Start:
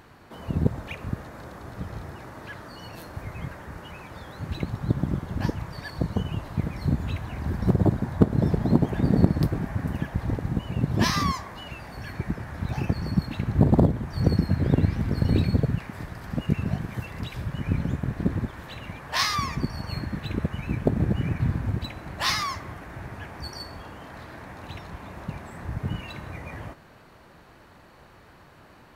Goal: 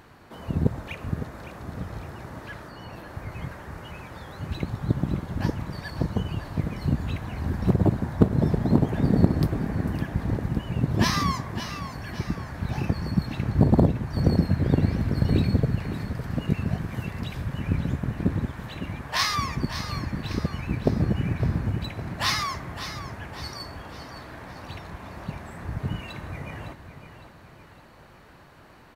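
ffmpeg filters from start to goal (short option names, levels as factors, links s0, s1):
-filter_complex "[0:a]asettb=1/sr,asplit=3[s0][s1][s2];[s0]atrim=end=2.674[s3];[s1]atrim=start=2.67:end=3.32,asetpts=PTS-STARTPTS,afade=t=in:d=0.004:c=qsin,afade=t=out:st=0.646:d=0.004:c=qsin,acrossover=split=3000[s4][s5];[s5]acompressor=threshold=0.00158:ratio=4:attack=1:release=60[s6];[s4][s6]amix=inputs=2:normalize=0[s7];[s2]atrim=start=3.316[s8];[s3][s7]acrossfade=d=0.004:c1=hsin:c2=qsin[s9];[s9][s8]acrossfade=d=0.004:c1=qsin:c2=hsin,aecho=1:1:559|1118|1677|2236|2795:0.282|0.127|0.0571|0.0257|0.0116"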